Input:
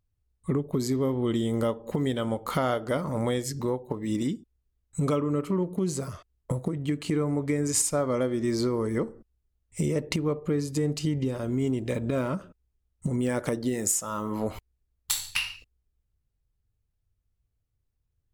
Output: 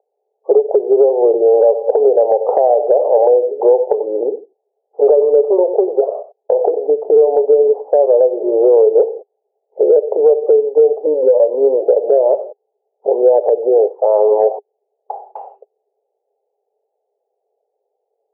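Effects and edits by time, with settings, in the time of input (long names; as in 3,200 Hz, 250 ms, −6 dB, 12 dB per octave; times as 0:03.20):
0:01.49–0:06.88: single-tap delay 91 ms −14.5 dB
0:11.03–0:11.82: EQ curve with evenly spaced ripples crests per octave 1.1, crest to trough 14 dB
whole clip: Chebyshev band-pass filter 410–820 Hz, order 4; downward compressor 6 to 1, threshold −37 dBFS; boost into a limiter +31.5 dB; level −1.5 dB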